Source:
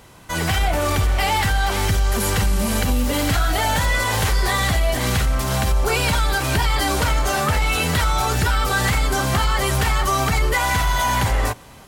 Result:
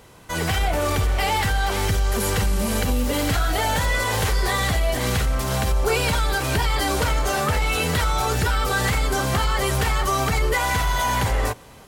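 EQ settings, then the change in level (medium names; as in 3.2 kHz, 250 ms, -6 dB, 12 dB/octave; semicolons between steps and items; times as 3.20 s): peaking EQ 460 Hz +5 dB 0.44 oct; -2.5 dB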